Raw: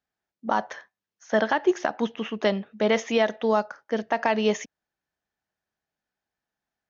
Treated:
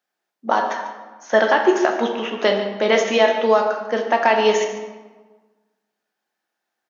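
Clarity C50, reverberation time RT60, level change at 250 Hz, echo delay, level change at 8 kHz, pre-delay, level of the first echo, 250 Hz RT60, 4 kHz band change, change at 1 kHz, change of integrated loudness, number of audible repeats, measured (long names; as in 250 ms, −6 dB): 5.5 dB, 1.3 s, +2.5 dB, 145 ms, can't be measured, 6 ms, −13.5 dB, 1.5 s, +8.0 dB, +8.0 dB, +6.5 dB, 1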